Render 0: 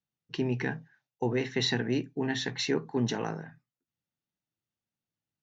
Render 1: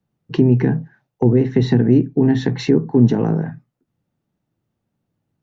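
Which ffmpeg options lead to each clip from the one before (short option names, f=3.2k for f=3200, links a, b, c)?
-filter_complex "[0:a]tiltshelf=f=1.4k:g=10,acrossover=split=370[a][b];[b]acompressor=threshold=-34dB:ratio=6[c];[a][c]amix=inputs=2:normalize=0,asplit=2[d][e];[e]alimiter=limit=-21dB:level=0:latency=1:release=455,volume=1dB[f];[d][f]amix=inputs=2:normalize=0,volume=5.5dB"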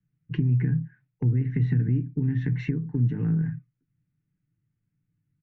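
-af "aecho=1:1:6.7:0.47,acompressor=threshold=-16dB:ratio=6,firequalizer=gain_entry='entry(120,0);entry(250,-9);entry(650,-27);entry(1500,-8);entry(2200,-5);entry(4100,-26)':delay=0.05:min_phase=1"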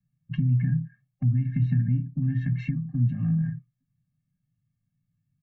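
-af "afftfilt=real='re*eq(mod(floor(b*sr/1024/260),2),0)':imag='im*eq(mod(floor(b*sr/1024/260),2),0)':win_size=1024:overlap=0.75"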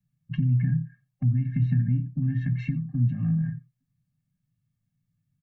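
-af "aecho=1:1:89:0.0708"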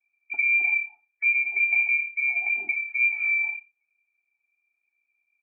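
-af "lowpass=f=2.1k:t=q:w=0.5098,lowpass=f=2.1k:t=q:w=0.6013,lowpass=f=2.1k:t=q:w=0.9,lowpass=f=2.1k:t=q:w=2.563,afreqshift=-2500"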